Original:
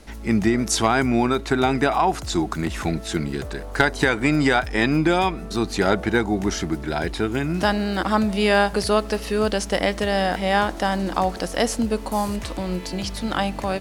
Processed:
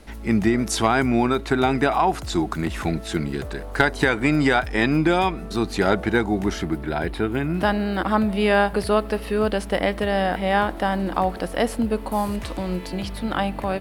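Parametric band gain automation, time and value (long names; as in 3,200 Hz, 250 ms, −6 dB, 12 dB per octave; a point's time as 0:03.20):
parametric band 6,300 Hz 0.95 octaves
0:06.37 −5 dB
0:06.90 −15 dB
0:11.94 −15 dB
0:12.55 −4.5 dB
0:13.21 −14.5 dB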